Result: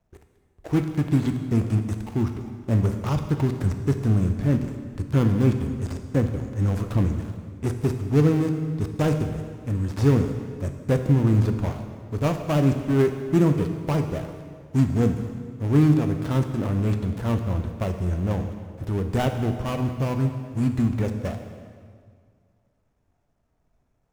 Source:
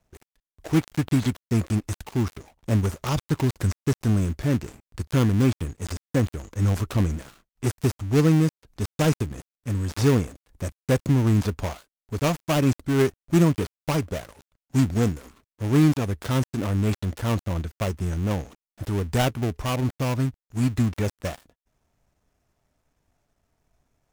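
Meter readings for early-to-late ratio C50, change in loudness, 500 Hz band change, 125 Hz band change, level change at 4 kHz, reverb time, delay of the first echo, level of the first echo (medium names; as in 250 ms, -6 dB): 7.5 dB, +0.5 dB, +0.5 dB, +1.5 dB, -6.0 dB, 1.9 s, no echo, no echo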